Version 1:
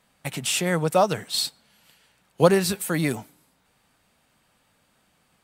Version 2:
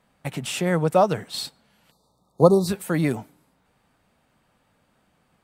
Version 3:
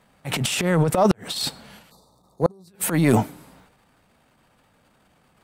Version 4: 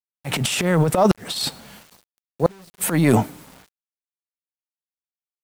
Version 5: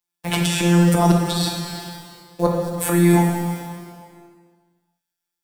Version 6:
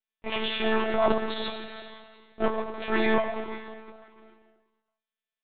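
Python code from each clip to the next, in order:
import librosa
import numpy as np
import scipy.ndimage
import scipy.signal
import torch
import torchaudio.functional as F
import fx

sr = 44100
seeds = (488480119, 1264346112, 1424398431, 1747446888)

y1 = fx.spec_erase(x, sr, start_s=1.91, length_s=0.77, low_hz=1300.0, high_hz=3500.0)
y1 = fx.high_shelf(y1, sr, hz=2100.0, db=-10.0)
y1 = y1 * librosa.db_to_amplitude(2.5)
y2 = fx.rider(y1, sr, range_db=3, speed_s=0.5)
y2 = fx.transient(y2, sr, attack_db=-11, sustain_db=11)
y2 = fx.gate_flip(y2, sr, shuts_db=-7.0, range_db=-38)
y2 = y2 * librosa.db_to_amplitude(3.0)
y3 = fx.quant_dither(y2, sr, seeds[0], bits=8, dither='none')
y3 = y3 * librosa.db_to_amplitude(1.5)
y4 = fx.robotise(y3, sr, hz=173.0)
y4 = fx.rev_plate(y4, sr, seeds[1], rt60_s=1.5, hf_ratio=0.9, predelay_ms=0, drr_db=-1.0)
y4 = fx.band_squash(y4, sr, depth_pct=40)
y5 = fx.lower_of_two(y4, sr, delay_ms=8.7)
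y5 = fx.lpc_monotone(y5, sr, seeds[2], pitch_hz=220.0, order=16)
y5 = y5 * librosa.db_to_amplitude(-4.5)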